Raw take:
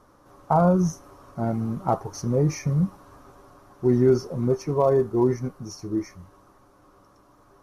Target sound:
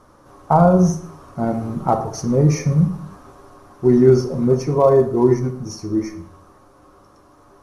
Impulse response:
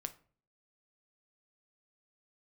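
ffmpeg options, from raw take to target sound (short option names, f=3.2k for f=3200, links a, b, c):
-filter_complex "[1:a]atrim=start_sample=2205,afade=t=out:st=0.2:d=0.01,atrim=end_sample=9261,asetrate=22050,aresample=44100[a];[0:a][a]afir=irnorm=-1:irlink=0,volume=4.5dB"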